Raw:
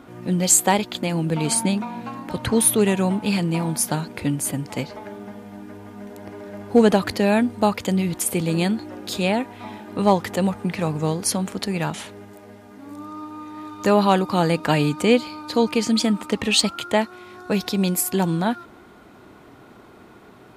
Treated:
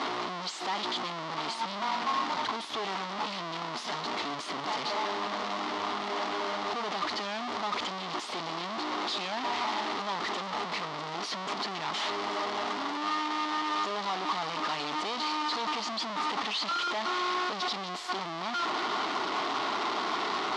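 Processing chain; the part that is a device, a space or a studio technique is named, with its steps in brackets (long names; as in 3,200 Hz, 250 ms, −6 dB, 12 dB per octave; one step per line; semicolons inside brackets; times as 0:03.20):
home computer beeper (sign of each sample alone; loudspeaker in its box 500–4,700 Hz, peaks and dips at 520 Hz −10 dB, 1,100 Hz +5 dB, 1,600 Hz −7 dB, 2,500 Hz −6 dB)
level −4.5 dB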